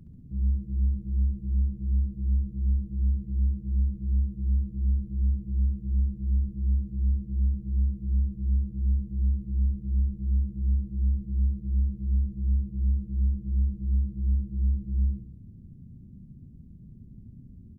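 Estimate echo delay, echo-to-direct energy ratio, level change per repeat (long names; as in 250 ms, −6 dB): 68 ms, −6.5 dB, −5.0 dB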